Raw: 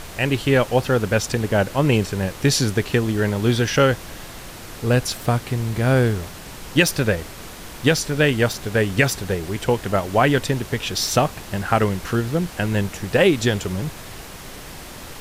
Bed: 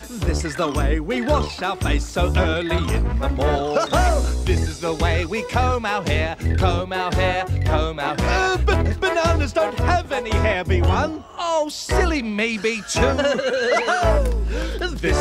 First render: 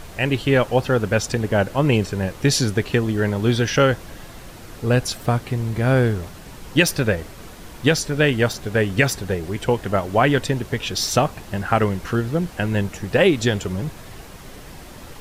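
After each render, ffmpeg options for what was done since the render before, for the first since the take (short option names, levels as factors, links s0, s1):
-af "afftdn=nr=6:nf=-37"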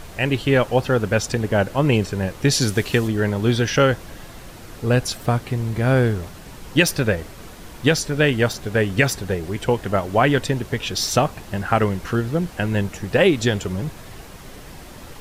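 -filter_complex "[0:a]asettb=1/sr,asplit=3[s0][s1][s2];[s0]atrim=end=2.614[s3];[s1]atrim=start=2.61:end=3.08,asetpts=PTS-STARTPTS,afade=t=in:d=0.004:c=qsin,afade=t=out:st=0.466:d=0.004:c=qsin,highshelf=f=3400:g=8.5[s4];[s2]atrim=start=3.076[s5];[s3][s4]acrossfade=d=0.004:c1=hsin:c2=qsin[s6];[s6][s5]acrossfade=d=0.004:c1=qsin:c2=hsin"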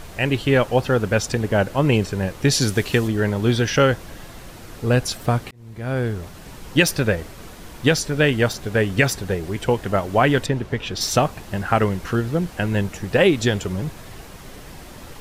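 -filter_complex "[0:a]asettb=1/sr,asplit=3[s0][s1][s2];[s0]atrim=end=10.464[s3];[s1]atrim=start=10.46:end=11.01,asetpts=PTS-STARTPTS,afade=t=in:d=0.004:c=qsin,afade=t=out:st=0.546:d=0.004:c=qsin,lowpass=f=2900:p=1[s4];[s2]atrim=start=11.006[s5];[s3][s4]acrossfade=d=0.004:c1=hsin:c2=qsin[s6];[s6][s5]acrossfade=d=0.004:c1=qsin:c2=hsin,asplit=2[s7][s8];[s7]atrim=end=5.51,asetpts=PTS-STARTPTS,afade=t=out:st=5.506:d=0.004:c=hsin[s9];[s8]atrim=start=5.51,asetpts=PTS-STARTPTS,afade=t=in:d=0.95[s10];[s9][s10]concat=n=2:v=0:a=1"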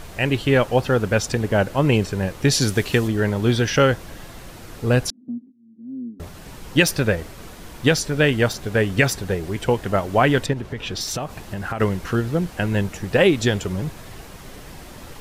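-filter_complex "[0:a]asettb=1/sr,asplit=3[s0][s1][s2];[s0]atrim=end=5.104[s3];[s1]atrim=start=5.1:end=6.2,asetpts=PTS-STARTPTS,afade=t=in:d=0.004:c=qsin,afade=t=out:st=1.096:d=0.004:c=qsin,asuperpass=centerf=250:order=4:qfactor=4.6[s4];[s2]atrim=start=6.196[s5];[s3][s4]acrossfade=d=0.004:c1=hsin:c2=qsin[s6];[s6][s5]acrossfade=d=0.004:c1=qsin:c2=hsin,asettb=1/sr,asplit=3[s7][s8][s9];[s7]atrim=end=10.534[s10];[s8]atrim=start=10.53:end=11.8,asetpts=PTS-STARTPTS,afade=t=in:d=0.004:c=qsin,afade=t=out:st=1.266:d=0.004:c=qsin,acompressor=threshold=0.0708:ratio=6:attack=3.2:release=140:knee=1:detection=peak[s11];[s9]atrim=start=11.796[s12];[s10][s11]acrossfade=d=0.004:c1=hsin:c2=qsin[s13];[s13][s12]acrossfade=d=0.004:c1=qsin:c2=hsin"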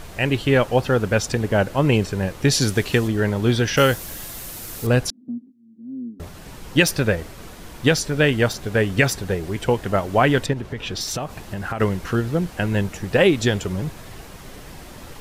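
-filter_complex "[0:a]asettb=1/sr,asplit=3[s0][s1][s2];[s0]atrim=end=3.774[s3];[s1]atrim=start=3.77:end=4.87,asetpts=PTS-STARTPTS,afade=t=in:d=0.004:c=qsin,afade=t=out:st=1.096:d=0.004:c=qsin,aemphasis=mode=production:type=75fm[s4];[s2]atrim=start=4.866[s5];[s3][s4]acrossfade=d=0.004:c1=hsin:c2=qsin[s6];[s6][s5]acrossfade=d=0.004:c1=qsin:c2=hsin"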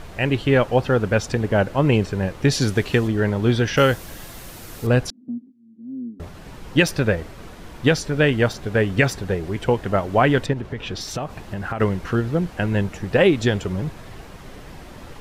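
-af "aemphasis=mode=reproduction:type=cd"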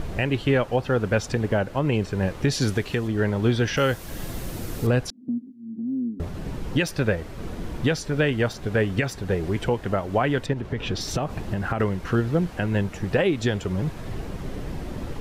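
-filter_complex "[0:a]acrossover=split=520[s0][s1];[s0]acompressor=mode=upward:threshold=0.0891:ratio=2.5[s2];[s2][s1]amix=inputs=2:normalize=0,alimiter=limit=0.299:level=0:latency=1:release=406"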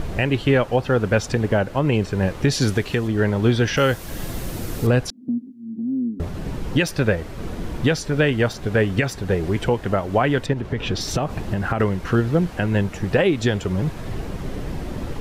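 -af "volume=1.5"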